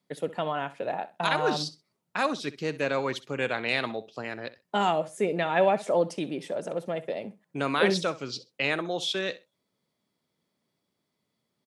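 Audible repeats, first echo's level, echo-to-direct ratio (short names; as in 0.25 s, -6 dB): 2, -17.0 dB, -17.0 dB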